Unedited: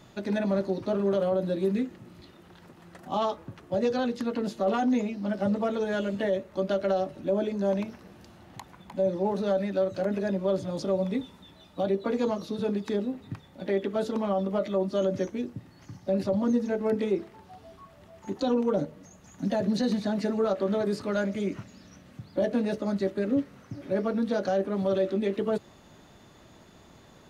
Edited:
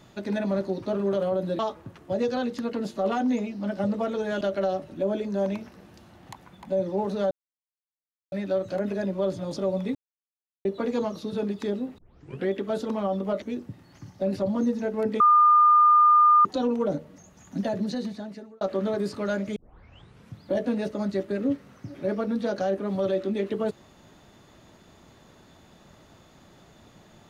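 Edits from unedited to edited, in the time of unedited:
1.59–3.21 cut
6.03–6.68 cut
9.58 insert silence 1.01 s
11.21–11.91 mute
13.24 tape start 0.51 s
14.68–15.29 cut
17.07–18.32 bleep 1210 Hz -13.5 dBFS
19.47–20.48 fade out linear
21.43 tape start 0.80 s

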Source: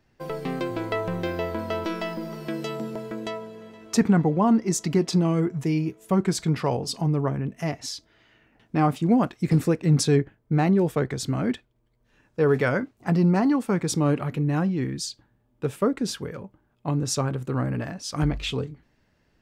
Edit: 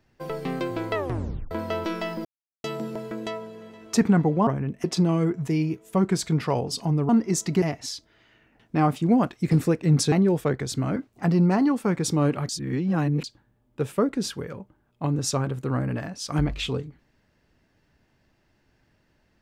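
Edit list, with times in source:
0.95 tape stop 0.56 s
2.25–2.64 mute
4.47–5 swap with 7.25–7.62
10.12–10.63 cut
11.47–12.8 cut
14.33–15.08 reverse

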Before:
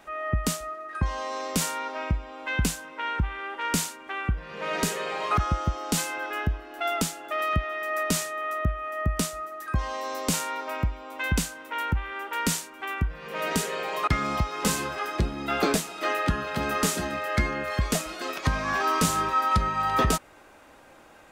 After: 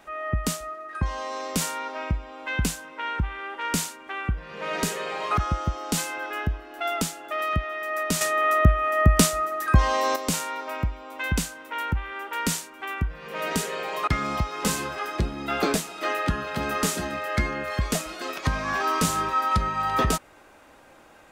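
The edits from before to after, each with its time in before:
8.21–10.16 gain +9 dB

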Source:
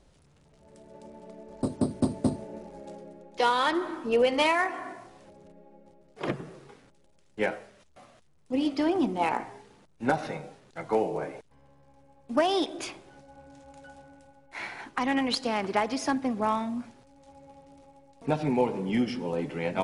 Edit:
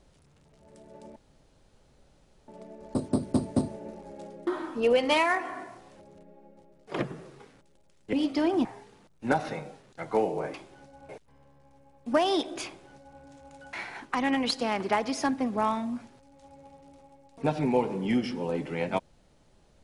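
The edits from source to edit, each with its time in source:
1.16 insert room tone 1.32 s
3.15–3.76 cut
7.42–8.55 cut
9.07–9.43 cut
12.89–13.44 copy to 11.32
13.96–14.57 cut

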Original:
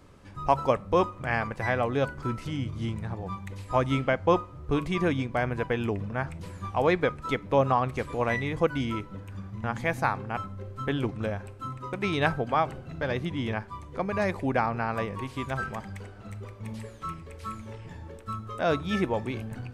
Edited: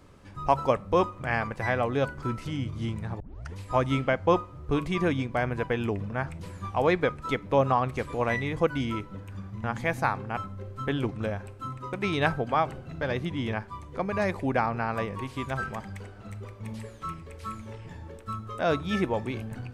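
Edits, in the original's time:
3.2 tape start 0.36 s

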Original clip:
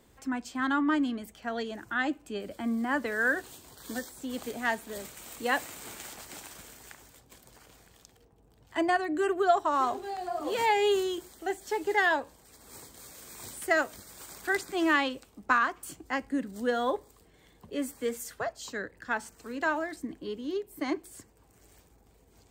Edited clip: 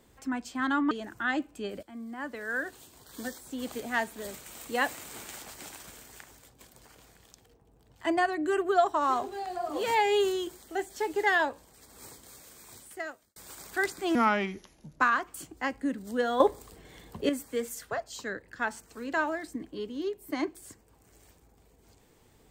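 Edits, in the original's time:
0.91–1.62 cut
2.54–4.31 fade in, from -14 dB
12.76–14.07 fade out
14.86–15.49 speed 74%
16.89–17.78 gain +9 dB

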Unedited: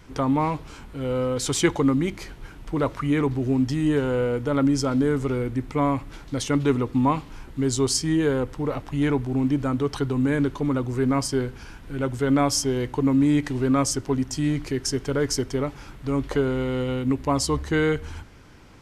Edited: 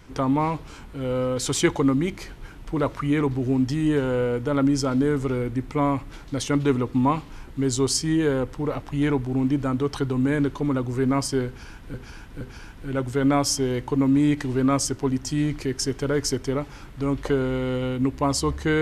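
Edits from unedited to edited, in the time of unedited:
11.47–11.94 loop, 3 plays

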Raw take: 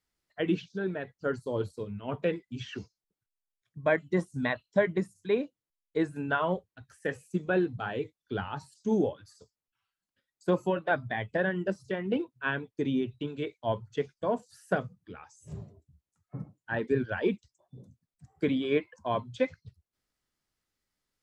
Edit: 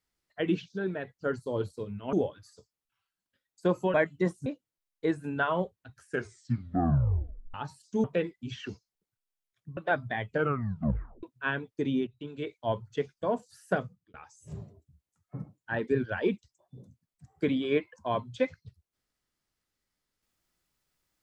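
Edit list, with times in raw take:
2.13–3.86 swap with 8.96–10.77
4.38–5.38 cut
6.93 tape stop 1.53 s
11.28 tape stop 0.95 s
13.07–13.53 fade in, from -13.5 dB
14.82–15.14 fade out

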